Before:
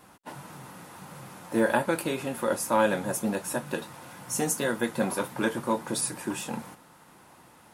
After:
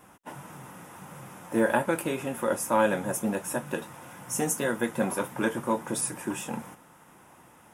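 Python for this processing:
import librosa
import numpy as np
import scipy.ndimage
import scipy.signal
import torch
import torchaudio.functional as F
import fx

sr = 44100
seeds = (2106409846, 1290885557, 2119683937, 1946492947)

y = fx.peak_eq(x, sr, hz=4300.0, db=-14.5, octaves=0.3)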